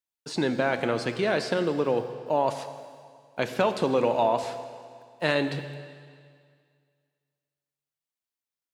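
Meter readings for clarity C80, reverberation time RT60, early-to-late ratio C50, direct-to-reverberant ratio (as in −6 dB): 10.5 dB, 2.1 s, 10.0 dB, 8.5 dB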